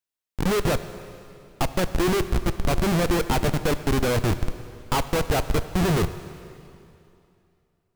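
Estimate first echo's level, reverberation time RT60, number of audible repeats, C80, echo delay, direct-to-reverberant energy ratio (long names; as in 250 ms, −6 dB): no echo audible, 2.7 s, no echo audible, 13.0 dB, no echo audible, 11.5 dB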